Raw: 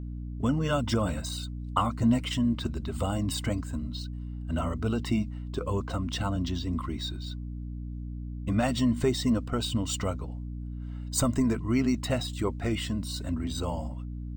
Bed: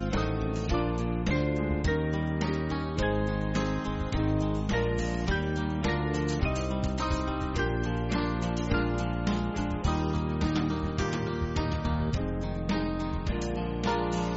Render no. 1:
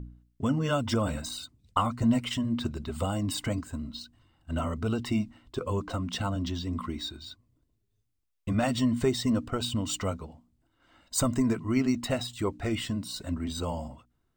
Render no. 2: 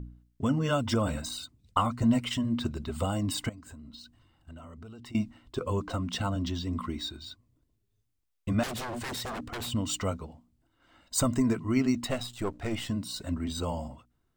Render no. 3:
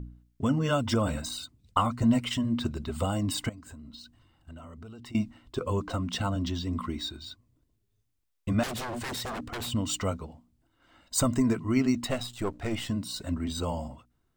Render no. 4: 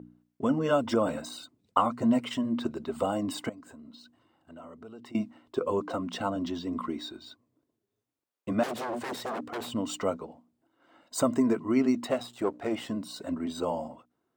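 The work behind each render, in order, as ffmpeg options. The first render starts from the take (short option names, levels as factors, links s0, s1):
-af "bandreject=f=60:t=h:w=4,bandreject=f=120:t=h:w=4,bandreject=f=180:t=h:w=4,bandreject=f=240:t=h:w=4,bandreject=f=300:t=h:w=4"
-filter_complex "[0:a]asettb=1/sr,asplit=3[s0][s1][s2];[s0]atrim=end=3.494[s3];[s1]atrim=start=3.49:end=5.15,asetpts=PTS-STARTPTS,afade=t=in:d=0.004:c=qsin,afade=t=out:st=1.656:d=0.004:c=qsin,acompressor=threshold=0.00708:ratio=10:attack=3.2:release=140:knee=1:detection=peak[s4];[s2]atrim=start=5.146[s5];[s3][s4]acrossfade=d=0.004:c1=hsin:c2=qsin[s6];[s6][s5]acrossfade=d=0.004:c1=qsin:c2=hsin,asettb=1/sr,asplit=3[s7][s8][s9];[s7]atrim=end=8.634[s10];[s8]atrim=start=8.63:end=9.72,asetpts=PTS-STARTPTS,afade=t=in:d=0.004:c=qsin,afade=t=out:st=1.086:d=0.004:c=qsin,aeval=exprs='0.0282*(abs(mod(val(0)/0.0282+3,4)-2)-1)':c=same[s11];[s9]atrim=start=9.716[s12];[s10][s11]acrossfade=d=0.004:c1=hsin:c2=qsin[s13];[s13][s12]acrossfade=d=0.004:c1=qsin:c2=hsin,asettb=1/sr,asplit=3[s14][s15][s16];[s14]atrim=end=12.074[s17];[s15]atrim=start=12.07:end=12.88,asetpts=PTS-STARTPTS,afade=t=in:d=0.004:c=qsin,afade=t=out:st=0.806:d=0.004:c=qsin,aeval=exprs='if(lt(val(0),0),0.447*val(0),val(0))':c=same[s18];[s16]atrim=start=12.876[s19];[s17][s18]acrossfade=d=0.004:c1=hsin:c2=qsin[s20];[s20][s19]acrossfade=d=0.004:c1=qsin:c2=hsin"
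-af "volume=1.12"
-af "highpass=340,tiltshelf=f=1300:g=7"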